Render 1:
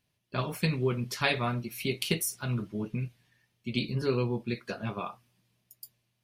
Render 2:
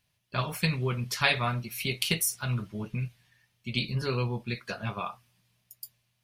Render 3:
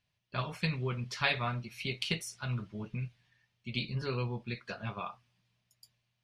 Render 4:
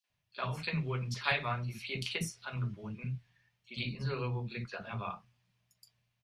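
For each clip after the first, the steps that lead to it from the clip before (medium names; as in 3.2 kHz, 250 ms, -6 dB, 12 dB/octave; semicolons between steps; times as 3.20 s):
peaking EQ 320 Hz -10 dB 1.5 oct; trim +4 dB
low-pass 5.4 kHz 12 dB/octave; trim -5 dB
three bands offset in time highs, mids, lows 40/100 ms, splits 300/3800 Hz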